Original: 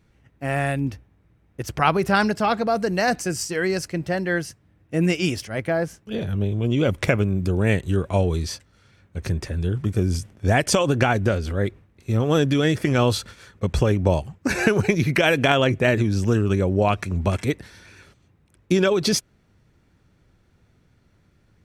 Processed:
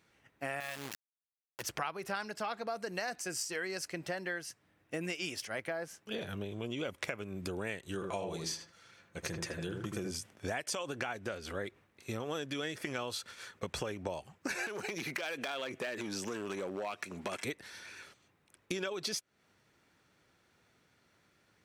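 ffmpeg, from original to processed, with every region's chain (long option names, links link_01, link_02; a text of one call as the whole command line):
ffmpeg -i in.wav -filter_complex "[0:a]asettb=1/sr,asplit=3[link_01][link_02][link_03];[link_01]atrim=end=0.604[link_04];[link_02]atrim=start=0.6:end=1.62,asetpts=PTS-STARTPTS,afade=type=in:duration=0.004:curve=qsin,afade=type=out:start_time=1.016:duration=0.004:curve=qsin,equalizer=frequency=290:width=0.43:gain=-5.5,acrusher=bits=3:dc=4:mix=0:aa=0.000001[link_05];[link_03]atrim=start=1.616[link_06];[link_04][link_05]acrossfade=duration=0.004:curve1=hsin:curve2=qsin[link_07];[link_07][link_06]acrossfade=duration=0.004:curve1=qsin:curve2=hsin,asettb=1/sr,asplit=3[link_08][link_09][link_10];[link_08]atrim=end=7.944[link_11];[link_09]atrim=start=7.94:end=10.11,asetpts=PTS-STARTPTS,afade=type=in:duration=0.004:curve=qsin,afade=type=out:start_time=2.166:duration=0.004:curve=qsin,equalizer=frequency=6500:width=6.4:gain=4.5,aecho=1:1:5.9:0.37,atrim=end_sample=95697,asplit=2[link_12][link_13];[link_13]adelay=79,lowpass=frequency=1300:poles=1,volume=-3.5dB,asplit=2[link_14][link_15];[link_15]adelay=79,lowpass=frequency=1300:poles=1,volume=0.26,asplit=2[link_16][link_17];[link_17]adelay=79,lowpass=frequency=1300:poles=1,volume=0.26,asplit=2[link_18][link_19];[link_19]adelay=79,lowpass=frequency=1300:poles=1,volume=0.26[link_20];[link_12][link_14][link_16][link_18][link_20]amix=inputs=5:normalize=0,atrim=end_sample=95697[link_21];[link_10]atrim=start=10.106[link_22];[link_11][link_21]acrossfade=duration=0.004:curve1=hsin:curve2=qsin[link_23];[link_23][link_22]acrossfade=duration=0.004:curve1=qsin:curve2=hsin,asettb=1/sr,asplit=3[link_24][link_25][link_26];[link_24]atrim=end=14.664[link_27];[link_25]atrim=start=14.66:end=17.45,asetpts=PTS-STARTPTS,afade=type=in:duration=0.004:curve=qsin,afade=type=out:start_time=2.786:duration=0.004:curve=qsin,highpass=190,acompressor=threshold=-20dB:ratio=5:attack=3.2:release=140:knee=1:detection=peak,asoftclip=type=hard:threshold=-20dB[link_28];[link_26]atrim=start=17.446[link_29];[link_27][link_28]acrossfade=duration=0.004:curve1=hsin:curve2=qsin[link_30];[link_30][link_29]acrossfade=duration=0.004:curve1=qsin:curve2=hsin,highpass=frequency=780:poles=1,acompressor=threshold=-35dB:ratio=6" out.wav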